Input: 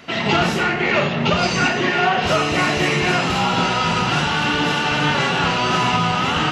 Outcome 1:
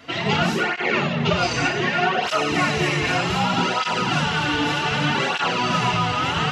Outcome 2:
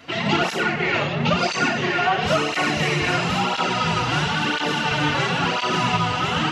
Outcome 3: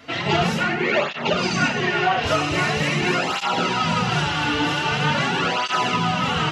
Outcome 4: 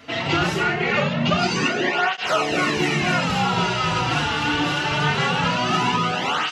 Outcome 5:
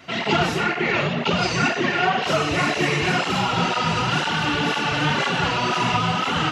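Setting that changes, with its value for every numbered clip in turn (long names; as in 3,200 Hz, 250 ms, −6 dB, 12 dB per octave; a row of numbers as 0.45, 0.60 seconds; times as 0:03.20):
through-zero flanger with one copy inverted, nulls at: 0.65, 0.98, 0.44, 0.23, 2 Hertz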